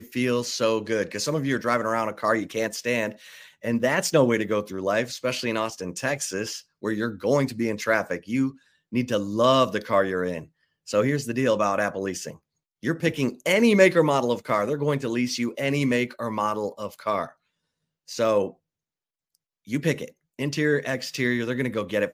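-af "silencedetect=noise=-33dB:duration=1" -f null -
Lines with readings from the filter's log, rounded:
silence_start: 18.50
silence_end: 19.69 | silence_duration: 1.19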